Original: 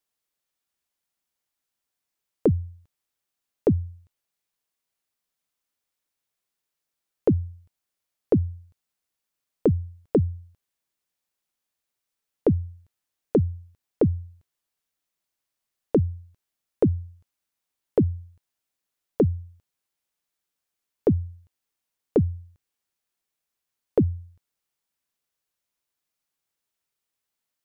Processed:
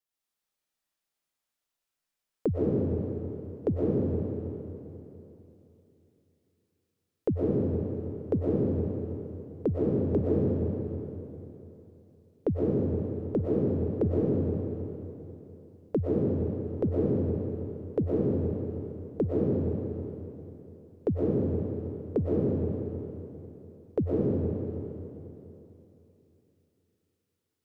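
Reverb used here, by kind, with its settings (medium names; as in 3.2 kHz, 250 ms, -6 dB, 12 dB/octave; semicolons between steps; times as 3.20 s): algorithmic reverb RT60 3.2 s, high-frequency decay 0.85×, pre-delay 80 ms, DRR -6.5 dB; trim -8 dB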